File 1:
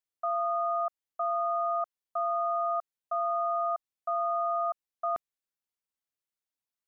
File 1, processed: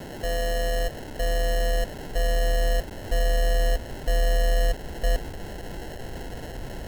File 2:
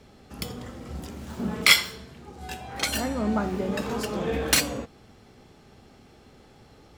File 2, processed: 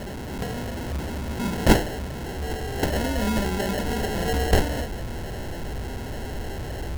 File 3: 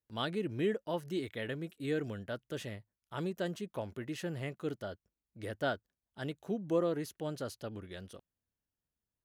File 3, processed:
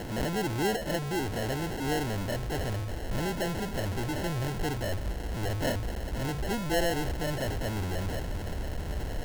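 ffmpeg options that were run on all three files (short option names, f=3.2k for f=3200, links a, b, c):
-af "aeval=exprs='val(0)+0.5*0.0376*sgn(val(0))':c=same,acrusher=samples=37:mix=1:aa=0.000001,asubboost=boost=3:cutoff=94"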